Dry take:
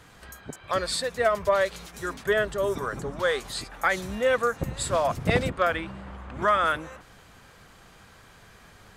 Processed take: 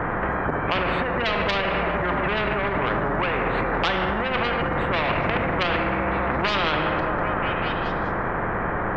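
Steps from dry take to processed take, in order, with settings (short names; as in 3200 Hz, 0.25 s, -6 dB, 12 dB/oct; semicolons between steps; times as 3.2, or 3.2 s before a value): inverse Chebyshev low-pass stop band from 4800 Hz, stop band 70 dB; in parallel at 0 dB: compressor, threshold -45 dBFS, peak gain reduction 24.5 dB; on the sum: soft clip -18.5 dBFS, distortion -16 dB; delay with a stepping band-pass 0.196 s, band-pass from 290 Hz, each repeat 0.7 oct, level -10 dB; on a send at -7 dB: reverb RT60 1.1 s, pre-delay 6 ms; on the sum: maximiser +29 dB; spectral compressor 4:1; gain -8 dB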